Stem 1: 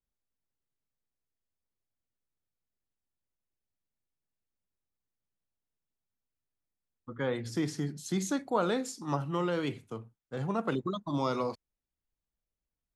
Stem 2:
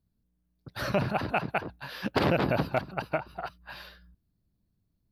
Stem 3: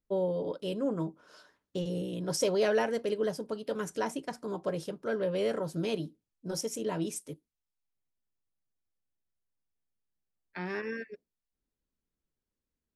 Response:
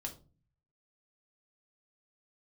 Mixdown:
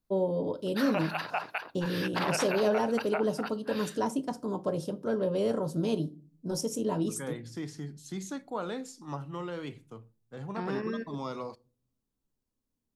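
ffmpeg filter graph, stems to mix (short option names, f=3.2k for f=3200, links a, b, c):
-filter_complex "[0:a]volume=-7.5dB,asplit=2[a][b];[b]volume=-12dB[c];[1:a]highpass=830,acrossover=split=1400[d][e];[d]aeval=exprs='val(0)*(1-0.5/2+0.5/2*cos(2*PI*2.2*n/s))':c=same[f];[e]aeval=exprs='val(0)*(1-0.5/2-0.5/2*cos(2*PI*2.2*n/s))':c=same[g];[f][g]amix=inputs=2:normalize=0,volume=3dB,asplit=2[h][i];[i]volume=-11.5dB[j];[2:a]equalizer=f=250:t=o:w=1:g=5,equalizer=f=1k:t=o:w=1:g=3,equalizer=f=2k:t=o:w=1:g=-10,volume=-1.5dB,asplit=2[k][l];[l]volume=-5dB[m];[h][k]amix=inputs=2:normalize=0,equalizer=f=110:t=o:w=0.26:g=10.5,alimiter=limit=-21.5dB:level=0:latency=1:release=27,volume=0dB[n];[3:a]atrim=start_sample=2205[o];[c][j][m]amix=inputs=3:normalize=0[p];[p][o]afir=irnorm=-1:irlink=0[q];[a][n][q]amix=inputs=3:normalize=0"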